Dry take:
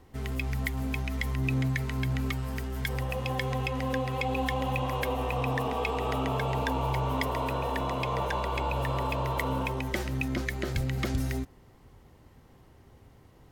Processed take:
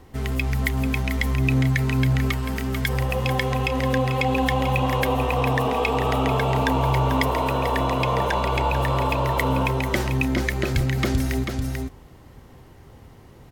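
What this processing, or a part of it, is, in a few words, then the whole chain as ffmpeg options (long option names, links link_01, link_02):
ducked delay: -filter_complex "[0:a]asplit=3[link_01][link_02][link_03];[link_02]adelay=441,volume=-4.5dB[link_04];[link_03]apad=whole_len=615523[link_05];[link_04][link_05]sidechaincompress=threshold=-33dB:ratio=8:attack=41:release=232[link_06];[link_01][link_06]amix=inputs=2:normalize=0,volume=7.5dB"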